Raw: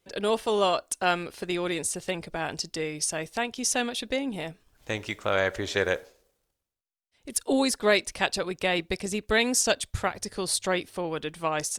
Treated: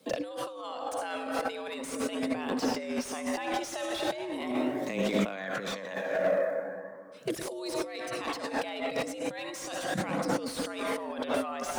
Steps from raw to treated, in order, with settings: frequency shift +94 Hz; high-pass 130 Hz 24 dB/octave; de-hum 168.4 Hz, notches 3; small resonant body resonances 250/510/1100 Hz, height 8 dB, ringing for 40 ms; on a send at -7 dB: reverberation RT60 2.4 s, pre-delay 47 ms; on the sum: peak limiter -16 dBFS, peak gain reduction 8 dB; compressor with a negative ratio -36 dBFS, ratio -1; flange 0.39 Hz, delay 0.2 ms, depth 1.4 ms, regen +47%; slew-rate limiter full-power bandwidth 29 Hz; trim +7 dB

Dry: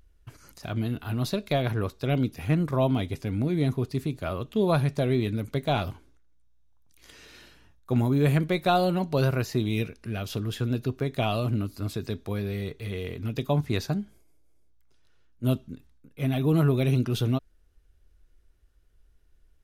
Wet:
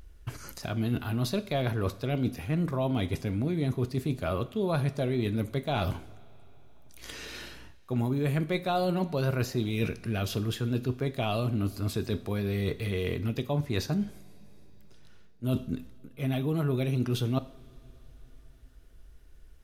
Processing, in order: reverse; compression 6:1, threshold -35 dBFS, peak gain reduction 16 dB; reverse; two-slope reverb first 0.54 s, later 4.4 s, from -19 dB, DRR 12.5 dB; trim +8.5 dB

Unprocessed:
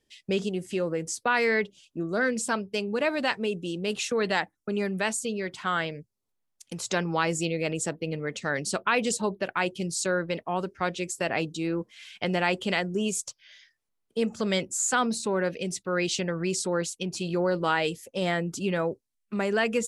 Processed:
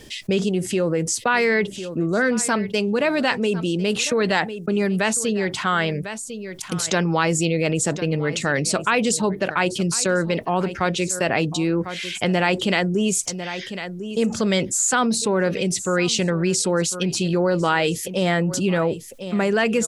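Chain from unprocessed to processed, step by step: peaking EQ 120 Hz +3 dB 2 oct; delay 1050 ms -20.5 dB; level flattener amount 50%; trim +4 dB

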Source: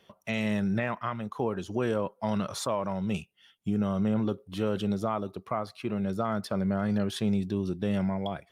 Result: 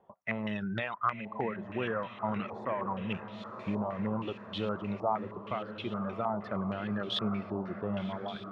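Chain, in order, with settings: reverb removal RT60 0.91 s; echo that smears into a reverb 1048 ms, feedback 57%, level -9.5 dB; step-sequenced low-pass 6.4 Hz 870–3500 Hz; trim -5 dB

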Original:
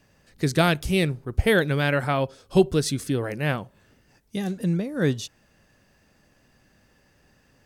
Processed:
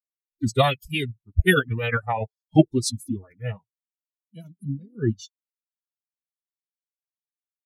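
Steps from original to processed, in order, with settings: expander on every frequency bin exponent 3; formant-preserving pitch shift -3.5 st; trim +6 dB

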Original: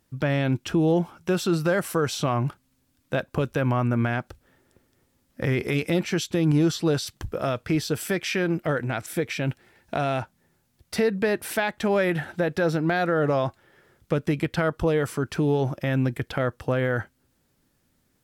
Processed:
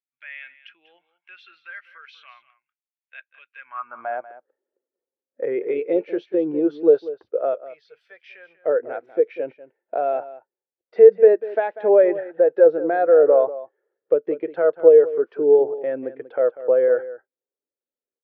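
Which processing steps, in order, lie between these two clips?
7.54–8.64 s: amplifier tone stack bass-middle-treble 10-0-10; high-pass sweep 2.2 kHz -> 460 Hz, 3.59–4.25 s; distance through air 300 m; delay 192 ms -10.5 dB; spectral contrast expander 1.5:1; trim +6 dB

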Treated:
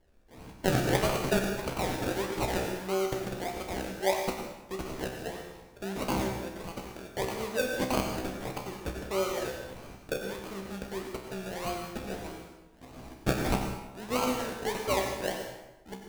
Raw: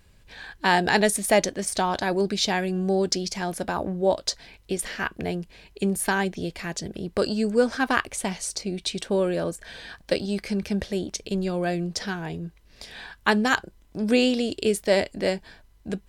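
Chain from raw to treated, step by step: peaking EQ 150 Hz -15 dB 1.9 oct; decimation with a swept rate 34×, swing 60% 1.6 Hz; feedback comb 64 Hz, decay 0.47 s, harmonics all, mix 80%; plate-style reverb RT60 0.97 s, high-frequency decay 0.8×, pre-delay 80 ms, DRR 4 dB; trim +2.5 dB

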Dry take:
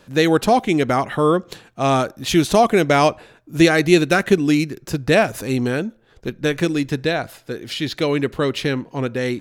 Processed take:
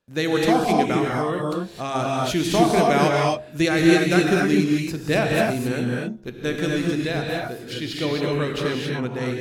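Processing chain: gate with hold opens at -38 dBFS; de-hum 68.03 Hz, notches 14; 0.94–1.95 s: compression 1.5:1, threshold -22 dBFS, peak gain reduction 4 dB; gated-style reverb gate 290 ms rising, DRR -1.5 dB; endings held to a fixed fall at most 350 dB/s; trim -6.5 dB

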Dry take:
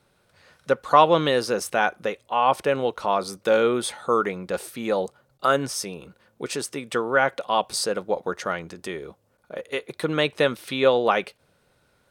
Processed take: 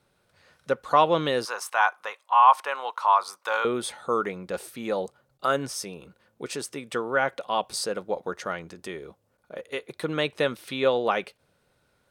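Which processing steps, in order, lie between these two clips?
1.45–3.65 s: resonant high-pass 1 kHz, resonance Q 3.9; trim -4 dB

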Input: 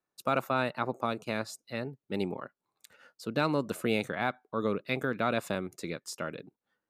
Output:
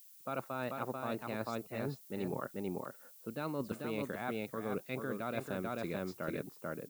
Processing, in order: treble shelf 2.1 kHz -6.5 dB; expander -55 dBFS; on a send: delay 440 ms -6 dB; on the sum: level-controlled noise filter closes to 1 kHz, open at -26.5 dBFS; reverse; compression 10:1, threshold -38 dBFS, peak gain reduction 15.5 dB; reverse; added noise violet -62 dBFS; trim +4 dB

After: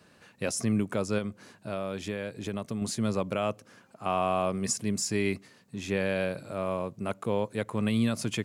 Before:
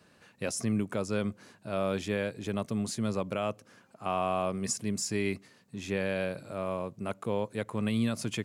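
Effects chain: 1.18–2.82 s: compression, threshold -32 dBFS, peak gain reduction 7 dB; trim +2.5 dB

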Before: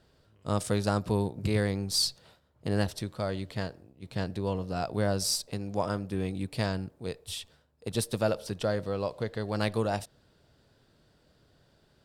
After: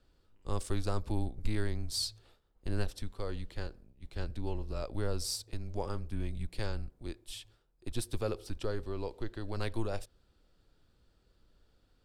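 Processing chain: frequency shift -110 Hz; bass shelf 89 Hz +9 dB; trim -7.5 dB

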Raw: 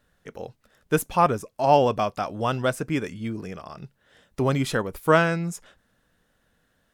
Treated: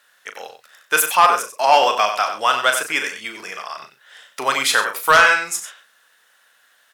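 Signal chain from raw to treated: high-pass 1.2 kHz 12 dB/octave; doubling 38 ms -8.5 dB; echo from a far wall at 16 m, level -9 dB; sine folder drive 6 dB, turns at -9.5 dBFS; trim +4.5 dB

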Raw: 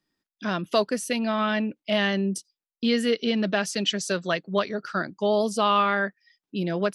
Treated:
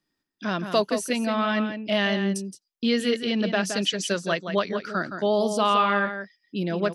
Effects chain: echo from a far wall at 29 m, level -8 dB

